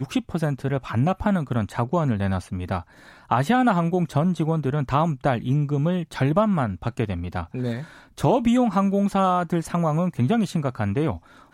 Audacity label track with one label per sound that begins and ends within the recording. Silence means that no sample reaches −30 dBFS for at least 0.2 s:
3.310000	7.830000	sound
8.180000	11.170000	sound